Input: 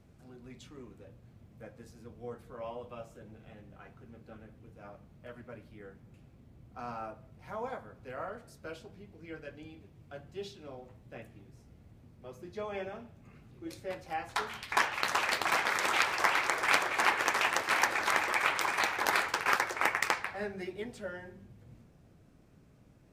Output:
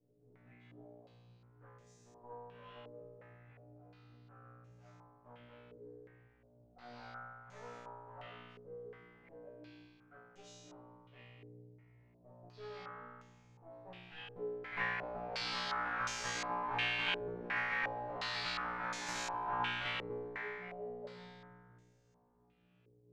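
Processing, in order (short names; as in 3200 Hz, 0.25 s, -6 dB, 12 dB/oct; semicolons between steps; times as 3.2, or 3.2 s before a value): minimum comb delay 6.9 ms; resonator 60 Hz, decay 1.6 s, harmonics all, mix 100%; stepped low-pass 2.8 Hz 430–6600 Hz; gain +4.5 dB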